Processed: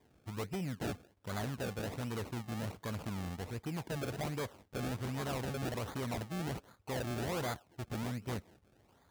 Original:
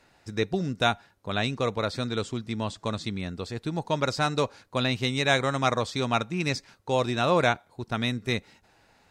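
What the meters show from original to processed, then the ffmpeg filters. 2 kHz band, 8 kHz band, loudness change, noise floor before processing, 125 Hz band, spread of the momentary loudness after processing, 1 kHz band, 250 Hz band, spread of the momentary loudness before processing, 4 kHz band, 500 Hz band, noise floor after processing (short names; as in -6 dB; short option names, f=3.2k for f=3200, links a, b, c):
-15.0 dB, -7.5 dB, -12.0 dB, -63 dBFS, -8.0 dB, 5 LU, -14.5 dB, -9.5 dB, 9 LU, -16.5 dB, -13.0 dB, -69 dBFS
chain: -af "equalizer=f=61:t=o:w=2:g=6,acrusher=samples=31:mix=1:aa=0.000001:lfo=1:lforange=31:lforate=1.3,asoftclip=type=tanh:threshold=-27.5dB,highpass=46,volume=-6dB"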